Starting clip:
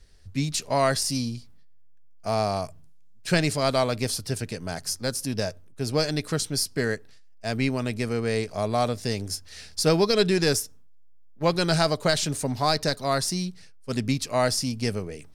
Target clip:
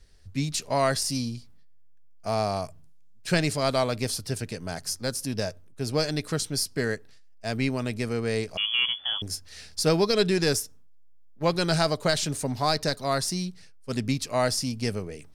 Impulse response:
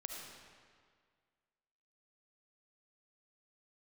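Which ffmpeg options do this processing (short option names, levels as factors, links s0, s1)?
-filter_complex "[0:a]asettb=1/sr,asplit=3[s0][s1][s2];[s0]atrim=end=8.574[s3];[s1]atrim=start=8.57:end=9.22,asetpts=PTS-STARTPTS,afade=t=in:d=0.004:c=qsin,afade=t=out:st=0.646:d=0.004:c=qsin,lowpass=f=3000:t=q:w=0.5098,lowpass=f=3000:t=q:w=0.6013,lowpass=f=3000:t=q:w=0.9,lowpass=f=3000:t=q:w=2.563,afreqshift=-3500[s4];[s2]atrim=start=9.216[s5];[s3][s4]acrossfade=d=0.004:c1=hsin:c2=qsin[s6];[s6][s5]acrossfade=d=0.004:c1=qsin:c2=hsin,volume=0.841"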